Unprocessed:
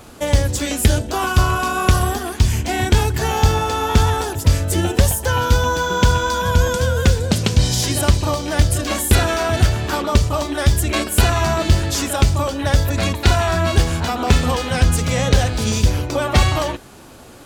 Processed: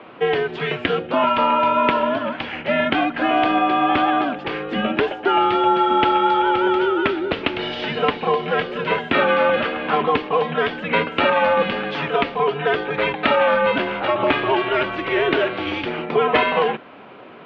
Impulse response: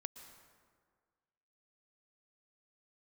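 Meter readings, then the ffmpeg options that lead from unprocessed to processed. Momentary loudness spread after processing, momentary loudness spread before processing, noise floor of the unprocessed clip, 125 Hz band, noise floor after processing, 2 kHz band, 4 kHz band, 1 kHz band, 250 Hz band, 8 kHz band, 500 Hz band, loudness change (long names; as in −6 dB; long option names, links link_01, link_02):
7 LU, 3 LU, −37 dBFS, −19.0 dB, −38 dBFS, +2.0 dB, −3.5 dB, +3.5 dB, −0.5 dB, below −35 dB, +3.0 dB, −1.5 dB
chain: -af "highpass=frequency=390:width_type=q:width=0.5412,highpass=frequency=390:width_type=q:width=1.307,lowpass=frequency=3100:width_type=q:width=0.5176,lowpass=frequency=3100:width_type=q:width=0.7071,lowpass=frequency=3100:width_type=q:width=1.932,afreqshift=-130,volume=4dB"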